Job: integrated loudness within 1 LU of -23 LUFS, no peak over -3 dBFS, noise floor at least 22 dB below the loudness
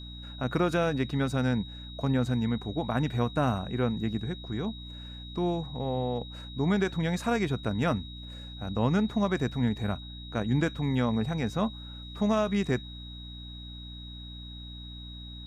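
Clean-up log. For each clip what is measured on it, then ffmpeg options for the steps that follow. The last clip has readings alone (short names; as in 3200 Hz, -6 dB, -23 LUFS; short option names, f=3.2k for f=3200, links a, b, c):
hum 60 Hz; harmonics up to 300 Hz; hum level -41 dBFS; steady tone 3800 Hz; tone level -45 dBFS; loudness -29.5 LUFS; peak -14.0 dBFS; loudness target -23.0 LUFS
-> -af "bandreject=f=60:t=h:w=4,bandreject=f=120:t=h:w=4,bandreject=f=180:t=h:w=4,bandreject=f=240:t=h:w=4,bandreject=f=300:t=h:w=4"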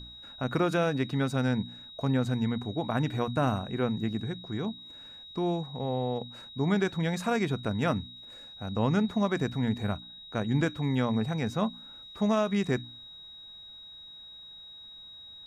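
hum none; steady tone 3800 Hz; tone level -45 dBFS
-> -af "bandreject=f=3.8k:w=30"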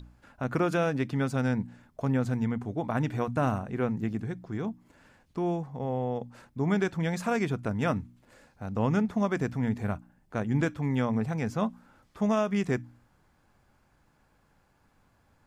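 steady tone none; loudness -30.0 LUFS; peak -14.0 dBFS; loudness target -23.0 LUFS
-> -af "volume=7dB"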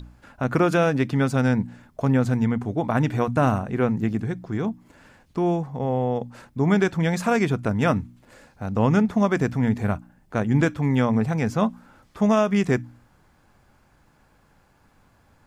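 loudness -23.0 LUFS; peak -7.0 dBFS; noise floor -60 dBFS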